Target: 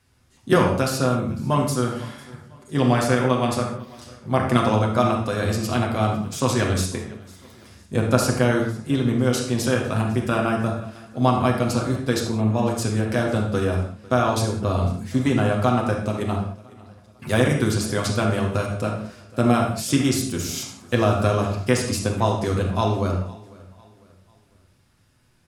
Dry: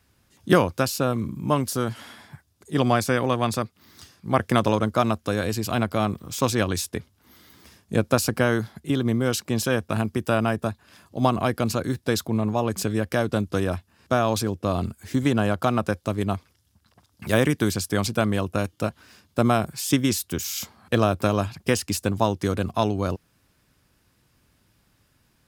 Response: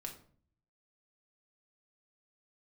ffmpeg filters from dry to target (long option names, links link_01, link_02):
-filter_complex "[0:a]aecho=1:1:501|1002|1503:0.0794|0.0318|0.0127[link_01];[1:a]atrim=start_sample=2205,afade=type=out:start_time=0.16:duration=0.01,atrim=end_sample=7497,asetrate=22491,aresample=44100[link_02];[link_01][link_02]afir=irnorm=-1:irlink=0"